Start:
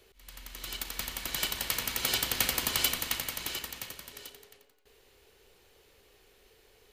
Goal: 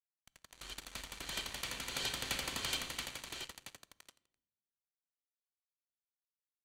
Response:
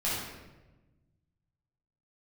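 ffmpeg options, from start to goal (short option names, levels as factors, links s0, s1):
-filter_complex "[0:a]acrusher=bits=5:mix=0:aa=0.5,lowpass=8000,asetrate=45938,aresample=44100,bandreject=f=5200:w=10,asplit=2[s0][s1];[1:a]atrim=start_sample=2205,asetrate=61740,aresample=44100[s2];[s1][s2]afir=irnorm=-1:irlink=0,volume=0.0596[s3];[s0][s3]amix=inputs=2:normalize=0,volume=0.447"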